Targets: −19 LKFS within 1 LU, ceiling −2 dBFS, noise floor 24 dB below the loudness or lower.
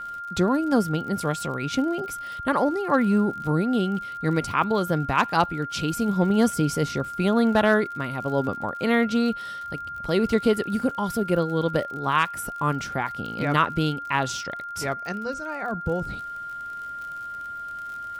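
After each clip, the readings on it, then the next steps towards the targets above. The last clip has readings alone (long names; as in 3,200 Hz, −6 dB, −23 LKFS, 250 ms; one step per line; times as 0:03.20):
crackle rate 58 per second; interfering tone 1,400 Hz; level of the tone −32 dBFS; integrated loudness −25.0 LKFS; sample peak −7.5 dBFS; target loudness −19.0 LKFS
→ click removal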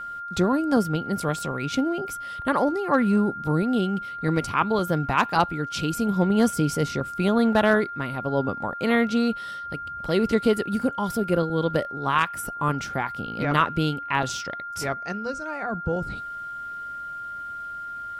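crackle rate 1.5 per second; interfering tone 1,400 Hz; level of the tone −32 dBFS
→ notch filter 1,400 Hz, Q 30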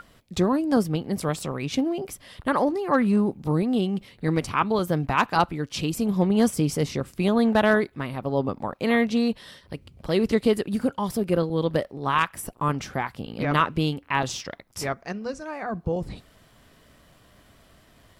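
interfering tone none found; integrated loudness −25.0 LKFS; sample peak −7.0 dBFS; target loudness −19.0 LKFS
→ level +6 dB
brickwall limiter −2 dBFS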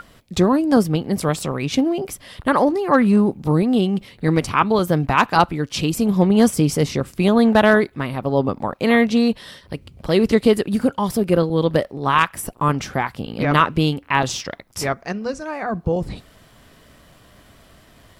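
integrated loudness −19.0 LKFS; sample peak −2.0 dBFS; background noise floor −51 dBFS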